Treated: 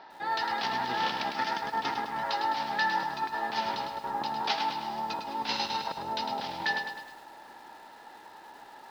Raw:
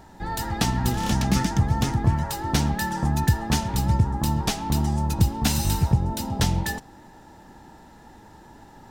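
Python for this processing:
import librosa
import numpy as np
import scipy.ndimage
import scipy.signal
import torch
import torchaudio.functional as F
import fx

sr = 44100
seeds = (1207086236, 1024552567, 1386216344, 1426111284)

y = scipy.signal.sosfilt(scipy.signal.butter(8, 4900.0, 'lowpass', fs=sr, output='sos'), x)
y = fx.over_compress(y, sr, threshold_db=-24.0, ratio=-0.5)
y = scipy.signal.sosfilt(scipy.signal.butter(2, 600.0, 'highpass', fs=sr, output='sos'), y)
y = fx.echo_crushed(y, sr, ms=104, feedback_pct=55, bits=9, wet_db=-6.0)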